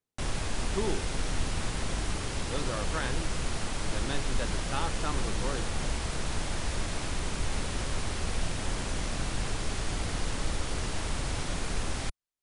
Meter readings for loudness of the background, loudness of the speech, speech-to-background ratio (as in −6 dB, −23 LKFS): −34.0 LKFS, −37.5 LKFS, −3.5 dB